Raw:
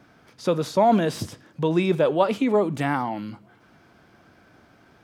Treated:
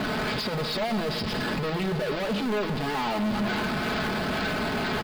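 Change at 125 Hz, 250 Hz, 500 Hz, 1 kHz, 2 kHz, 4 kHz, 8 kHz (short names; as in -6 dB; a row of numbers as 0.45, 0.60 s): -1.0 dB, -2.5 dB, -6.0 dB, -3.5 dB, +6.0 dB, +7.5 dB, n/a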